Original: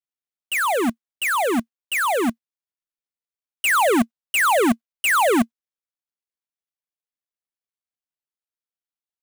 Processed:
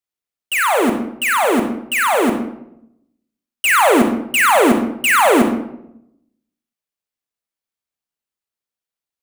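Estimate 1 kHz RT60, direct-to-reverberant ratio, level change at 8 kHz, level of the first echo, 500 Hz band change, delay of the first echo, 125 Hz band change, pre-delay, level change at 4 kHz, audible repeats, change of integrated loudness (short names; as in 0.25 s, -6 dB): 0.75 s, 4.0 dB, +5.0 dB, none, +6.0 dB, none, +6.5 dB, 34 ms, +5.0 dB, none, +5.5 dB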